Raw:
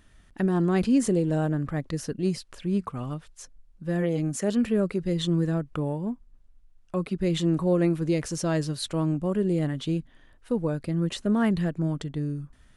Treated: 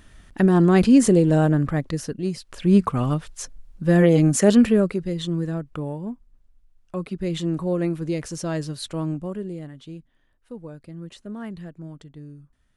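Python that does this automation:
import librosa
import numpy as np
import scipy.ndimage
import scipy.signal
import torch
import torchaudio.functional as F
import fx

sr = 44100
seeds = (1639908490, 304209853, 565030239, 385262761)

y = fx.gain(x, sr, db=fx.line((1.62, 7.5), (2.35, -1.0), (2.71, 10.5), (4.53, 10.5), (5.15, -1.0), (9.13, -1.0), (9.69, -11.0)))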